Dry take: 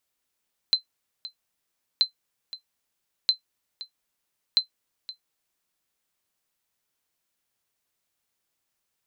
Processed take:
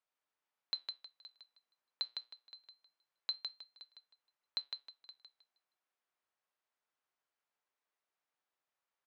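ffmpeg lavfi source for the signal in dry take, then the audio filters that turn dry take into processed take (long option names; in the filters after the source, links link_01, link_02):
-f lavfi -i "aevalsrc='0.299*(sin(2*PI*4080*mod(t,1.28))*exp(-6.91*mod(t,1.28)/0.11)+0.141*sin(2*PI*4080*max(mod(t,1.28)-0.52,0))*exp(-6.91*max(mod(t,1.28)-0.52,0)/0.11))':duration=5.12:sample_rate=44100"
-filter_complex "[0:a]flanger=delay=6.6:depth=1.8:regen=84:speed=0.25:shape=sinusoidal,bandpass=frequency=1000:width_type=q:width=0.79:csg=0,asplit=2[link_01][link_02];[link_02]aecho=0:1:157|314|471|628:0.562|0.152|0.041|0.0111[link_03];[link_01][link_03]amix=inputs=2:normalize=0"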